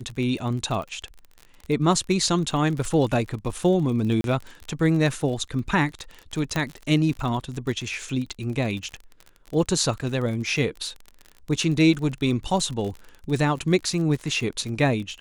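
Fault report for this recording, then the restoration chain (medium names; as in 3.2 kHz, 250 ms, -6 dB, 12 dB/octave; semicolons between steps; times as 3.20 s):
crackle 36 per s -30 dBFS
4.21–4.24 s: dropout 32 ms
6.56 s: pop -11 dBFS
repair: de-click; interpolate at 4.21 s, 32 ms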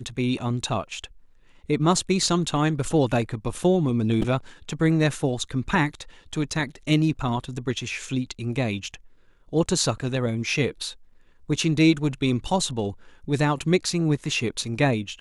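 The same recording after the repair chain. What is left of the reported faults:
nothing left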